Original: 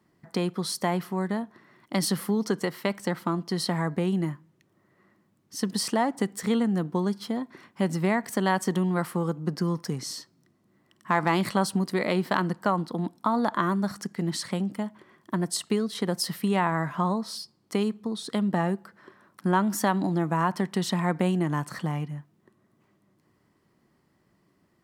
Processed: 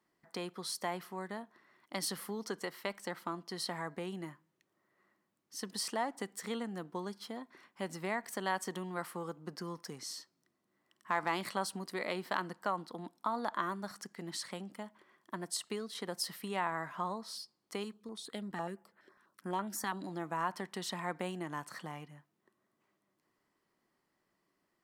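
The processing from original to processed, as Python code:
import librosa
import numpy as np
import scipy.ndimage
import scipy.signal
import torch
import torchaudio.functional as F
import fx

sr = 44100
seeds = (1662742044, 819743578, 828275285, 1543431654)

y = fx.peak_eq(x, sr, hz=100.0, db=-14.5, octaves=2.9)
y = fx.filter_held_notch(y, sr, hz=12.0, low_hz=580.0, high_hz=5600.0, at=(17.84, 20.07))
y = y * 10.0 ** (-7.5 / 20.0)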